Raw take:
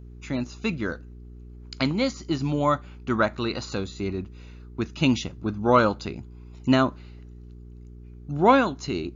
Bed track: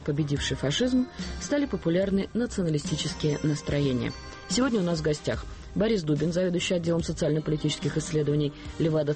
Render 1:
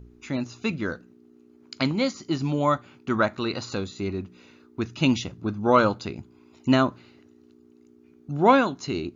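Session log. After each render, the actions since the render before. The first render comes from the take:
hum removal 60 Hz, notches 3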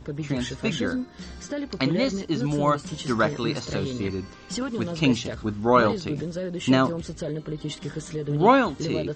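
mix in bed track −5 dB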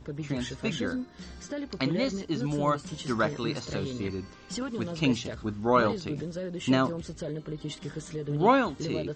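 level −4.5 dB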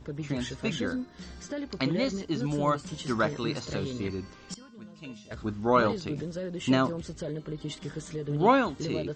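0:04.54–0:05.31: tuned comb filter 210 Hz, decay 0.54 s, harmonics odd, mix 90%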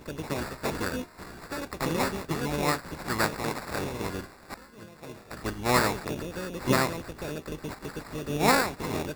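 ceiling on every frequency bin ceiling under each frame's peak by 16 dB
sample-rate reduction 3,100 Hz, jitter 0%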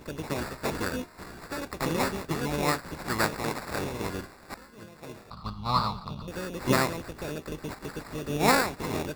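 0:05.30–0:06.28: drawn EQ curve 200 Hz 0 dB, 330 Hz −19 dB, 650 Hz −9 dB, 1,200 Hz +5 dB, 1,700 Hz −24 dB, 4,200 Hz +2 dB, 6,500 Hz −20 dB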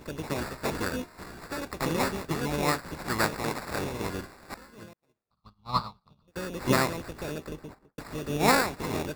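0:04.93–0:06.36: expander for the loud parts 2.5 to 1, over −48 dBFS
0:07.34–0:07.98: fade out and dull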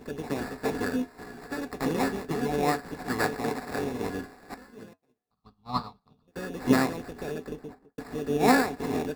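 hollow resonant body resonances 260/430/730/1,700 Hz, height 12 dB, ringing for 55 ms
flanger 0.41 Hz, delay 5.1 ms, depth 2.7 ms, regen −74%

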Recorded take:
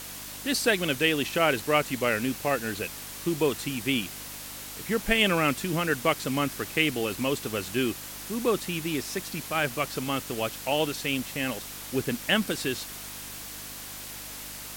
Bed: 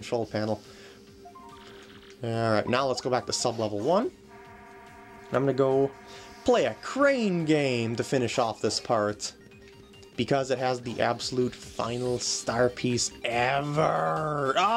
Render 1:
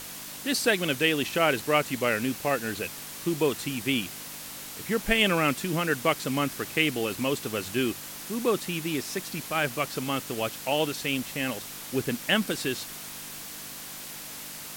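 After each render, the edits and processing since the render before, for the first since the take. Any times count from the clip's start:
hum removal 50 Hz, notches 2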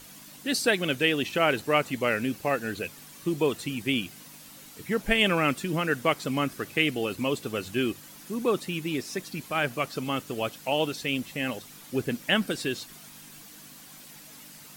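broadband denoise 10 dB, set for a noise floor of −40 dBFS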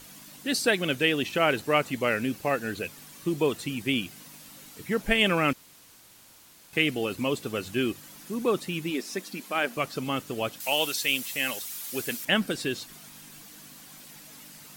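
0:05.53–0:06.73: fill with room tone
0:08.90–0:09.77: linear-phase brick-wall high-pass 170 Hz
0:10.60–0:12.25: spectral tilt +3.5 dB per octave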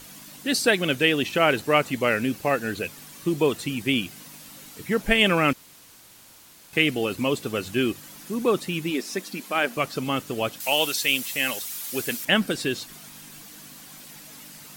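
level +3.5 dB

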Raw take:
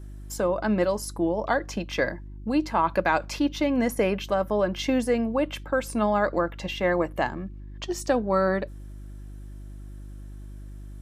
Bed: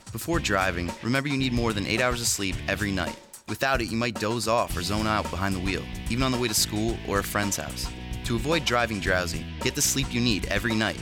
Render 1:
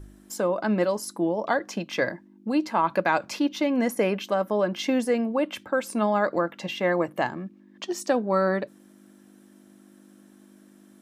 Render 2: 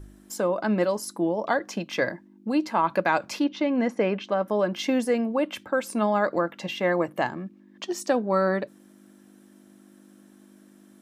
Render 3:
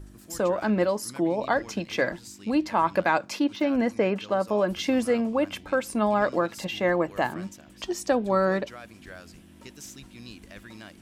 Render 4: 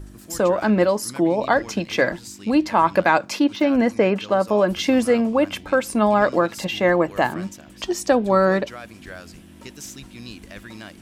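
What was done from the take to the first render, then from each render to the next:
hum removal 50 Hz, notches 3
0:03.44–0:04.48: high-frequency loss of the air 140 metres
mix in bed −20 dB
level +6 dB

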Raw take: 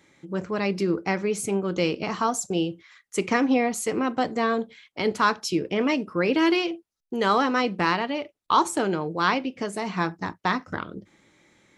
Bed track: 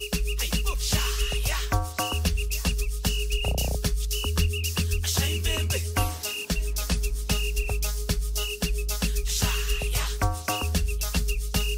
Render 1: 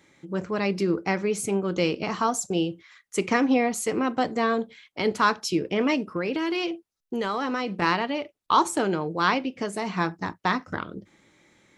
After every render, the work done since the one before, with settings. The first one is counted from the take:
0:06.14–0:07.82: downward compressor, threshold −23 dBFS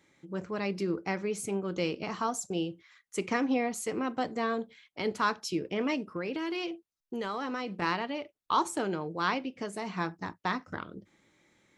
level −7 dB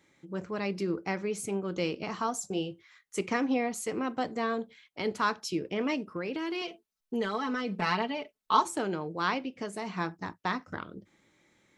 0:02.41–0:03.21: double-tracking delay 20 ms −8.5 dB
0:06.61–0:08.65: comb filter 4.6 ms, depth 83%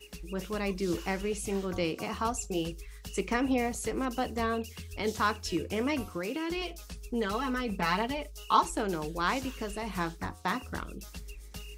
mix in bed track −18 dB

